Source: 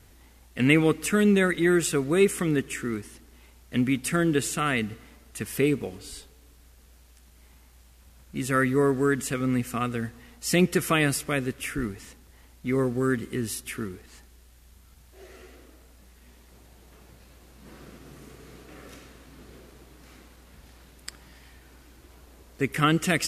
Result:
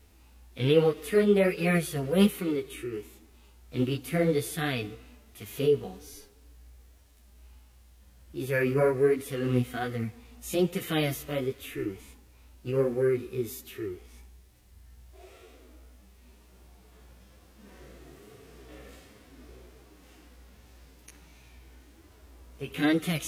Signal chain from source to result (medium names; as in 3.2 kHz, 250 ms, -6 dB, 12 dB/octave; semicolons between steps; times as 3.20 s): formant shift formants +4 st; chorus voices 2, 1.2 Hz, delay 13 ms, depth 3.5 ms; harmonic-percussive split percussive -12 dB; trim +2.5 dB